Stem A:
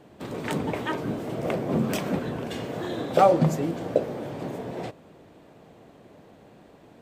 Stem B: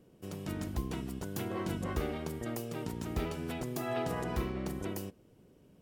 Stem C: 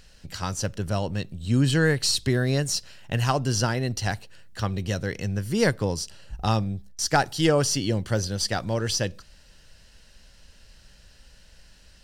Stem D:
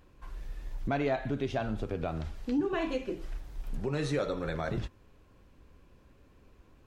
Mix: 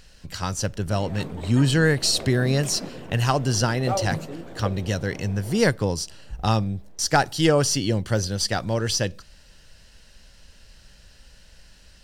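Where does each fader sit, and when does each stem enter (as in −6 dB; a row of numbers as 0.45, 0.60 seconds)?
−9.0 dB, muted, +2.0 dB, −15.0 dB; 0.70 s, muted, 0.00 s, 0.00 s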